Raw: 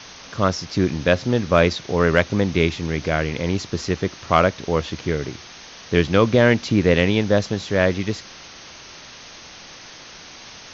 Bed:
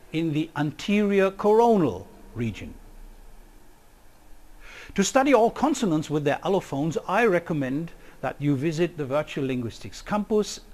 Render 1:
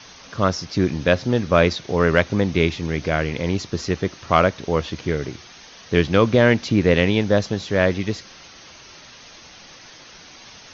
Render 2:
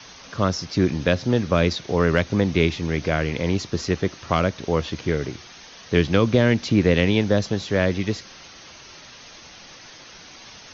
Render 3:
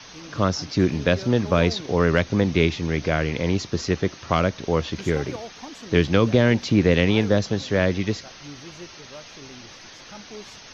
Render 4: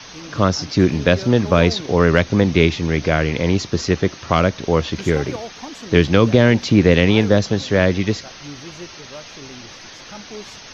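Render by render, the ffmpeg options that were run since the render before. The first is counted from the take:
-af "afftdn=nr=6:nf=-42"
-filter_complex "[0:a]acrossover=split=340|3000[s0][s1][s2];[s1]acompressor=threshold=0.112:ratio=6[s3];[s0][s3][s2]amix=inputs=3:normalize=0"
-filter_complex "[1:a]volume=0.133[s0];[0:a][s0]amix=inputs=2:normalize=0"
-af "volume=1.78,alimiter=limit=0.891:level=0:latency=1"

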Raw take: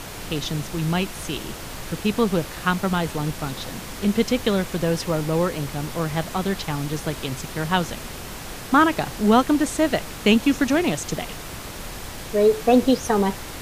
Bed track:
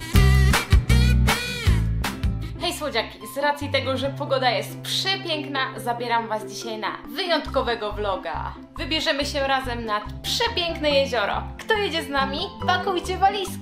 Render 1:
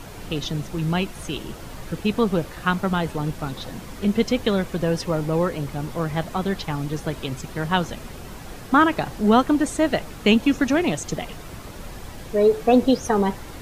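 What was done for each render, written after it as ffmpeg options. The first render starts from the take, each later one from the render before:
-af "afftdn=nr=8:nf=-35"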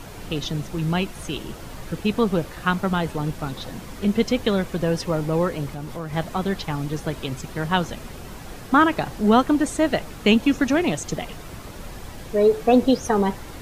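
-filter_complex "[0:a]asettb=1/sr,asplit=3[s0][s1][s2];[s0]atrim=end=5.724[s3];[s1]atrim=start=5.72:end=6.13,asetpts=PTS-STARTPTS,afade=t=in:d=0.004:c=qsin,afade=t=out:st=0.406:d=0.004:c=qsin,acompressor=threshold=0.0316:ratio=2:attack=3.2:release=140:knee=1:detection=peak[s4];[s2]atrim=start=6.126[s5];[s3][s4]acrossfade=d=0.004:c1=hsin:c2=qsin[s6];[s6][s5]acrossfade=d=0.004:c1=qsin:c2=hsin"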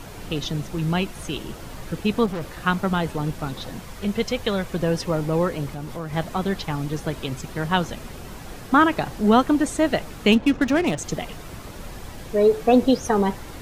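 -filter_complex "[0:a]asettb=1/sr,asplit=3[s0][s1][s2];[s0]atrim=end=2.264[s3];[s1]atrim=start=2.26:end=2.66,asetpts=PTS-STARTPTS,afade=t=in:d=0.004:c=qsin,afade=t=out:st=0.396:d=0.004:c=qsin,asoftclip=type=hard:threshold=0.0501[s4];[s2]atrim=start=2.656[s5];[s3][s4]acrossfade=d=0.004:c1=hsin:c2=qsin[s6];[s6][s5]acrossfade=d=0.004:c1=qsin:c2=hsin,asettb=1/sr,asplit=3[s7][s8][s9];[s7]atrim=end=3.814[s10];[s8]atrim=start=3.81:end=4.7,asetpts=PTS-STARTPTS,afade=t=in:d=0.004:c=qsin,afade=t=out:st=0.886:d=0.004:c=qsin,equalizer=f=280:t=o:w=0.88:g=-8.5[s11];[s9]atrim=start=4.696[s12];[s10][s11]acrossfade=d=0.004:c1=hsin:c2=qsin[s13];[s13][s12]acrossfade=d=0.004:c1=qsin:c2=hsin,asettb=1/sr,asplit=3[s14][s15][s16];[s14]atrim=end=10.324[s17];[s15]atrim=start=10.32:end=10.99,asetpts=PTS-STARTPTS,afade=t=in:d=0.004:c=qsin,afade=t=out:st=0.666:d=0.004:c=qsin,adynamicsmooth=sensitivity=7.5:basefreq=1400[s18];[s16]atrim=start=10.986[s19];[s17][s18]acrossfade=d=0.004:c1=hsin:c2=qsin[s20];[s20][s19]acrossfade=d=0.004:c1=qsin:c2=hsin"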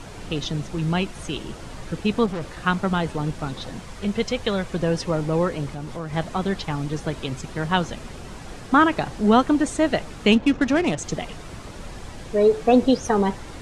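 -af "lowpass=f=9600:w=0.5412,lowpass=f=9600:w=1.3066"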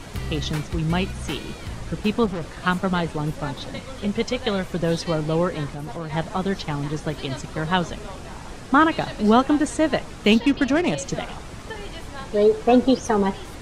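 -filter_complex "[1:a]volume=0.178[s0];[0:a][s0]amix=inputs=2:normalize=0"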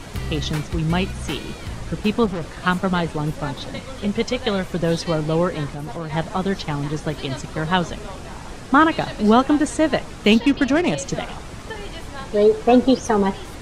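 -af "volume=1.26,alimiter=limit=0.794:level=0:latency=1"

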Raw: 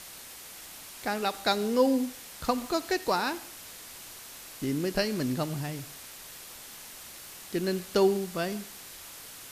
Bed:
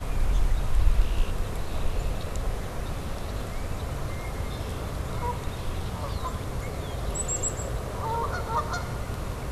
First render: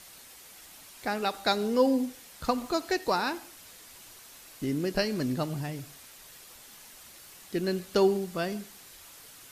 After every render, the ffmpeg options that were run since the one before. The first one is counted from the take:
-af "afftdn=nr=6:nf=-46"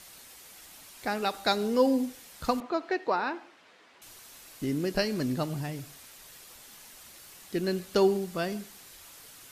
-filter_complex "[0:a]asettb=1/sr,asplit=3[s0][s1][s2];[s0]atrim=end=2.604[s3];[s1]atrim=start=2.6:end=4.02,asetpts=PTS-STARTPTS,afade=t=in:d=0.004:c=qsin,afade=t=out:st=1.416:d=0.004:c=qsin,highpass=260,lowpass=2500[s4];[s2]atrim=start=4.016[s5];[s3][s4]acrossfade=d=0.004:c1=hsin:c2=qsin[s6];[s6][s5]acrossfade=d=0.004:c1=qsin:c2=hsin"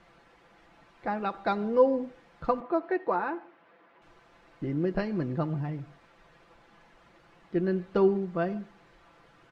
-af "lowpass=1500,aecho=1:1:5.9:0.51"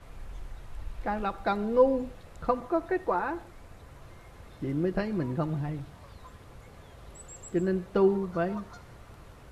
-filter_complex "[1:a]volume=0.126[s0];[0:a][s0]amix=inputs=2:normalize=0"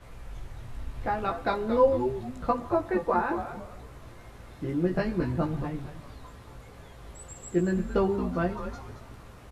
-filter_complex "[0:a]asplit=2[s0][s1];[s1]adelay=17,volume=0.708[s2];[s0][s2]amix=inputs=2:normalize=0,asplit=5[s3][s4][s5][s6][s7];[s4]adelay=224,afreqshift=-140,volume=0.355[s8];[s5]adelay=448,afreqshift=-280,volume=0.117[s9];[s6]adelay=672,afreqshift=-420,volume=0.0385[s10];[s7]adelay=896,afreqshift=-560,volume=0.0127[s11];[s3][s8][s9][s10][s11]amix=inputs=5:normalize=0"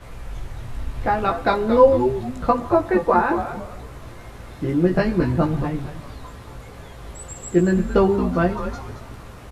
-af "volume=2.66,alimiter=limit=0.708:level=0:latency=1"

